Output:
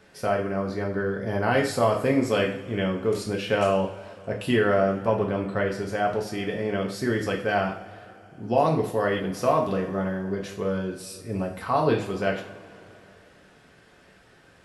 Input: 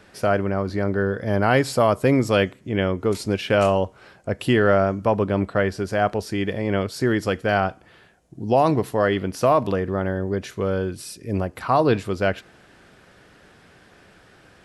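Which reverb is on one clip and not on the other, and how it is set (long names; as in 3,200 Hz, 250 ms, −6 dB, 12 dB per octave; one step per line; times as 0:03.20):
coupled-rooms reverb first 0.43 s, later 3.1 s, from −21 dB, DRR −0.5 dB
level −6.5 dB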